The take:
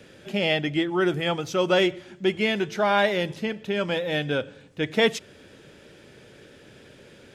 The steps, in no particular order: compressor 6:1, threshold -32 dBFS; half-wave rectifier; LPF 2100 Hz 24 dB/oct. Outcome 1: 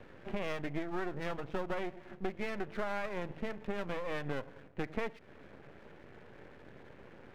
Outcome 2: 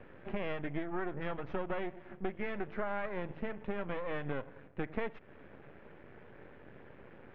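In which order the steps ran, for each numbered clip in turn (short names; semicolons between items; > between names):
LPF > half-wave rectifier > compressor; half-wave rectifier > LPF > compressor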